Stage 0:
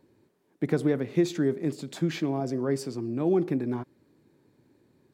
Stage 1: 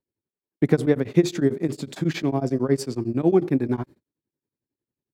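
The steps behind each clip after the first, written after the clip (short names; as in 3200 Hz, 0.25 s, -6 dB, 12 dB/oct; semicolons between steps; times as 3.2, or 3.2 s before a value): gate -51 dBFS, range -32 dB; low shelf 69 Hz +9 dB; beating tremolo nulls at 11 Hz; gain +7.5 dB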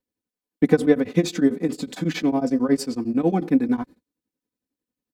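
comb 4 ms, depth 79%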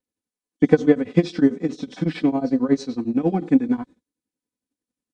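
nonlinear frequency compression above 3000 Hz 1.5:1; harmonic-percussive split percussive -3 dB; transient shaper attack +6 dB, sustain 0 dB; gain -1.5 dB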